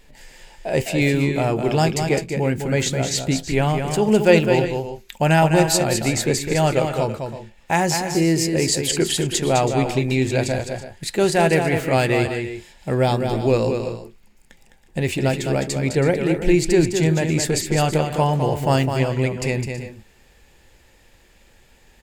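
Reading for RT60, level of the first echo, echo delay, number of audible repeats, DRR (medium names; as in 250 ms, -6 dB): no reverb, -6.5 dB, 208 ms, 2, no reverb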